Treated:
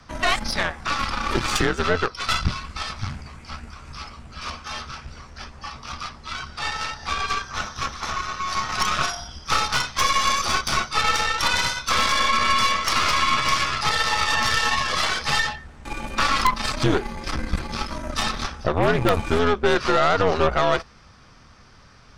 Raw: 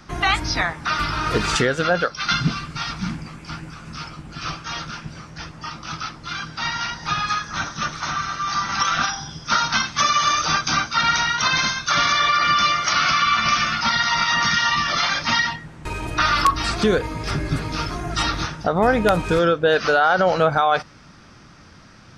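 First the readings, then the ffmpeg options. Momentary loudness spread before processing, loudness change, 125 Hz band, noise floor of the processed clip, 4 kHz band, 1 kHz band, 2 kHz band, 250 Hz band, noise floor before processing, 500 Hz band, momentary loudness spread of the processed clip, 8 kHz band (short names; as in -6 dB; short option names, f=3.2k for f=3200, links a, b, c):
15 LU, -2.0 dB, -2.0 dB, -49 dBFS, -2.0 dB, -2.5 dB, -3.0 dB, -2.5 dB, -46 dBFS, -2.5 dB, 16 LU, -1.0 dB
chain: -af "afreqshift=-86,aeval=exprs='0.891*(cos(1*acos(clip(val(0)/0.891,-1,1)))-cos(1*PI/2))+0.1*(cos(6*acos(clip(val(0)/0.891,-1,1)))-cos(6*PI/2))+0.178*(cos(8*acos(clip(val(0)/0.891,-1,1)))-cos(8*PI/2))':c=same,volume=-3dB"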